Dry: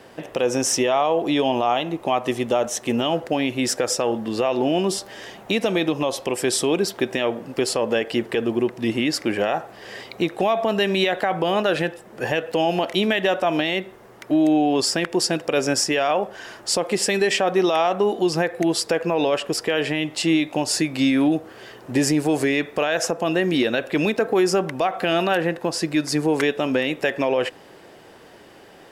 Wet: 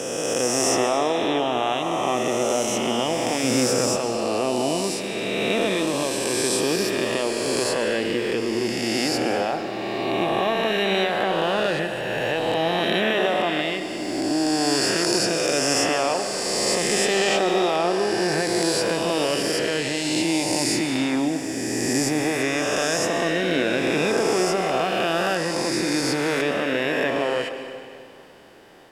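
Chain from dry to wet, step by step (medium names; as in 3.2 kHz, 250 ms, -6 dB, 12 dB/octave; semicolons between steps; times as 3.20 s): reverse spectral sustain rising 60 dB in 2.97 s; 3.43–3.96 s: peaking EQ 150 Hz +8.5 dB 2.2 oct; reverberation RT60 2.3 s, pre-delay 95 ms, DRR 8.5 dB; trim -6.5 dB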